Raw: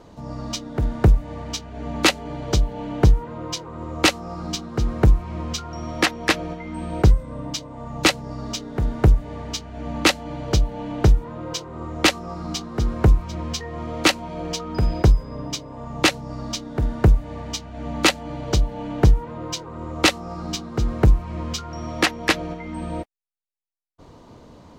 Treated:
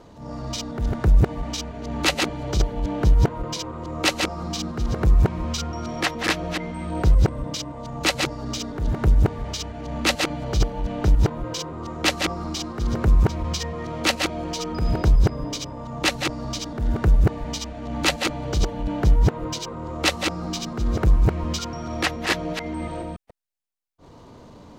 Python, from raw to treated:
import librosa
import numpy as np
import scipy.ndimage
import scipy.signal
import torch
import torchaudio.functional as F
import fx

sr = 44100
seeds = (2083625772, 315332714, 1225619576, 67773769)

y = fx.reverse_delay(x, sr, ms=143, wet_db=-4.0)
y = fx.transient(y, sr, attack_db=-8, sustain_db=0)